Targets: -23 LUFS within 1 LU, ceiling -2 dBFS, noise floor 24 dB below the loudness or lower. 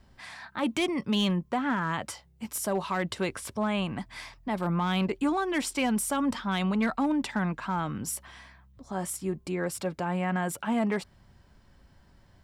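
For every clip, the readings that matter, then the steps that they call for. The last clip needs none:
clipped 0.3%; flat tops at -19.5 dBFS; loudness -30.0 LUFS; peak -19.5 dBFS; loudness target -23.0 LUFS
-> clip repair -19.5 dBFS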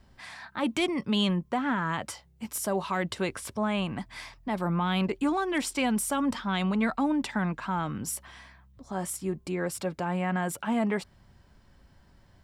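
clipped 0.0%; loudness -29.5 LUFS; peak -15.5 dBFS; loudness target -23.0 LUFS
-> gain +6.5 dB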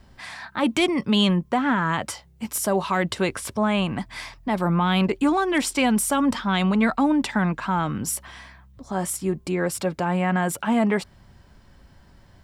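loudness -23.0 LUFS; peak -9.0 dBFS; noise floor -53 dBFS

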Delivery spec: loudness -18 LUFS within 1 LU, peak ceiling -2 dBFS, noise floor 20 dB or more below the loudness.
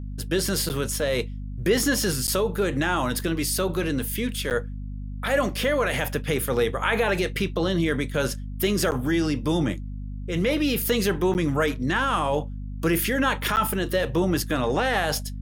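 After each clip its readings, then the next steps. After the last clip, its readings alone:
dropouts 6; longest dropout 9.2 ms; hum 50 Hz; harmonics up to 250 Hz; hum level -30 dBFS; loudness -24.5 LUFS; peak -9.5 dBFS; loudness target -18.0 LUFS
-> interpolate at 0.69/2.27/4.5/8.91/11.34/13.56, 9.2 ms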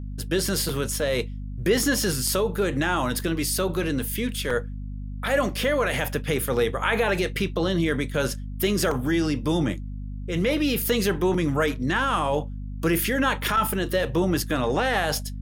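dropouts 0; hum 50 Hz; harmonics up to 250 Hz; hum level -31 dBFS
-> de-hum 50 Hz, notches 5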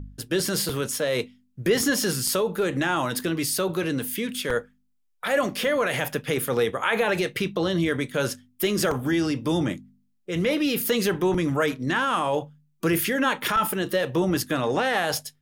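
hum none; loudness -25.0 LUFS; peak -10.0 dBFS; loudness target -18.0 LUFS
-> gain +7 dB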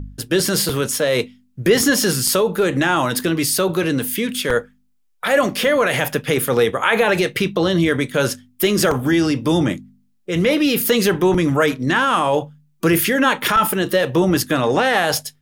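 loudness -18.0 LUFS; peak -3.0 dBFS; noise floor -60 dBFS

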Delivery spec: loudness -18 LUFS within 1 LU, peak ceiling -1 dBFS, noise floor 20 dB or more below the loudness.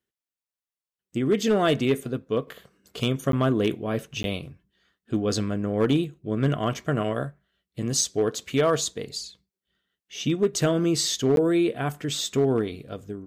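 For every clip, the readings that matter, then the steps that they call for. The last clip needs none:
clipped 0.4%; flat tops at -14.0 dBFS; dropouts 3; longest dropout 12 ms; loudness -25.5 LUFS; peak -14.0 dBFS; loudness target -18.0 LUFS
-> clip repair -14 dBFS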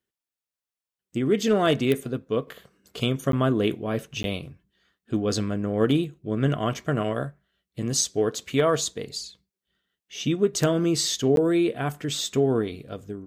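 clipped 0.0%; dropouts 3; longest dropout 12 ms
-> interpolate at 3.32/4.23/11.36, 12 ms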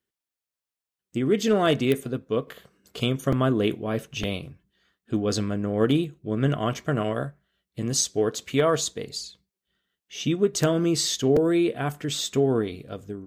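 dropouts 0; loudness -25.0 LUFS; peak -6.0 dBFS; loudness target -18.0 LUFS
-> gain +7 dB; limiter -1 dBFS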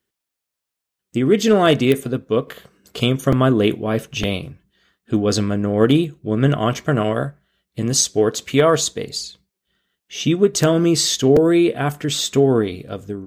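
loudness -18.0 LUFS; peak -1.0 dBFS; noise floor -83 dBFS

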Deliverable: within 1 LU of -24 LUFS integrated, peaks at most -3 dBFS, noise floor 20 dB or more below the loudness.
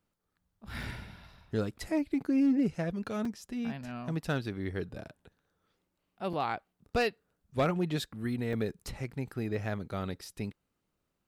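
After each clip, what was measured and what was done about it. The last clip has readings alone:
clipped 0.2%; flat tops at -21.0 dBFS; dropouts 5; longest dropout 3.6 ms; loudness -34.0 LUFS; peak -21.0 dBFS; loudness target -24.0 LUFS
-> clip repair -21 dBFS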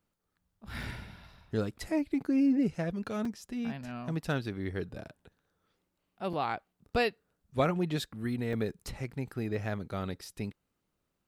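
clipped 0.0%; dropouts 5; longest dropout 3.6 ms
-> interpolate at 0.83/3.25/4.25/6.33/8.53, 3.6 ms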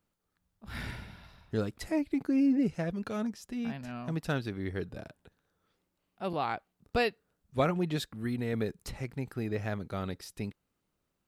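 dropouts 0; loudness -34.0 LUFS; peak -15.5 dBFS; loudness target -24.0 LUFS
-> gain +10 dB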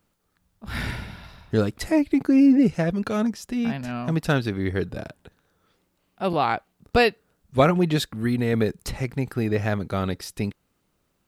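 loudness -24.0 LUFS; peak -5.5 dBFS; noise floor -72 dBFS

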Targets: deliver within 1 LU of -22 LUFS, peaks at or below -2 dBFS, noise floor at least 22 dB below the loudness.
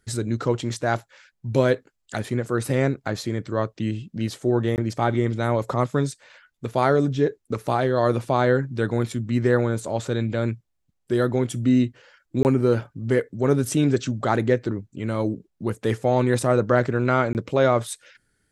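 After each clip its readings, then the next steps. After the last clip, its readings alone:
dropouts 3; longest dropout 19 ms; loudness -23.5 LUFS; peak -4.5 dBFS; loudness target -22.0 LUFS
-> interpolate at 4.76/12.43/17.33, 19 ms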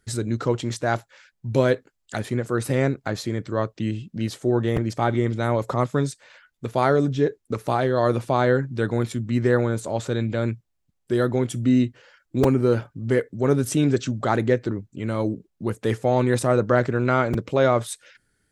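dropouts 0; loudness -23.5 LUFS; peak -4.5 dBFS; loudness target -22.0 LUFS
-> gain +1.5 dB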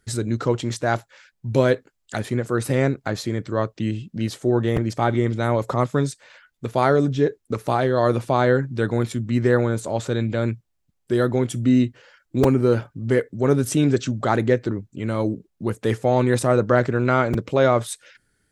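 loudness -22.0 LUFS; peak -3.0 dBFS; noise floor -72 dBFS

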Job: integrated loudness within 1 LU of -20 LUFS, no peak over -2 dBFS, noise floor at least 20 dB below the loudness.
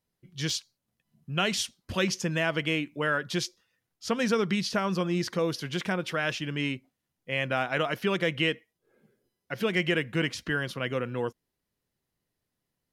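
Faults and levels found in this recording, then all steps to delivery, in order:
dropouts 1; longest dropout 3.1 ms; loudness -29.0 LUFS; peak -13.0 dBFS; loudness target -20.0 LUFS
-> interpolate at 0.5, 3.1 ms; gain +9 dB

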